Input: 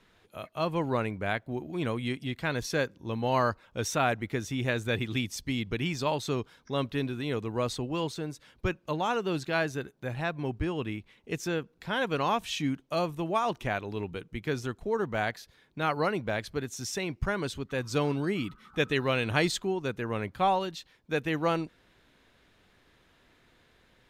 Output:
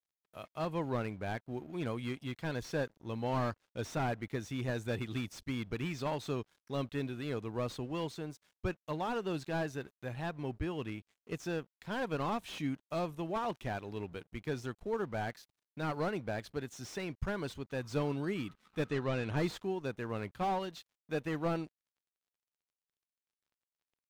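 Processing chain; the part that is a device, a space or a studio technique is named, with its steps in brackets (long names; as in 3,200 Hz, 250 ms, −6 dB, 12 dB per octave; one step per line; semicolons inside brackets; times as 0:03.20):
early transistor amplifier (dead-zone distortion −55 dBFS; slew-rate limiting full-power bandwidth 46 Hz)
0:18.89–0:19.37: low-pass filter 7,200 Hz 12 dB per octave
level −5.5 dB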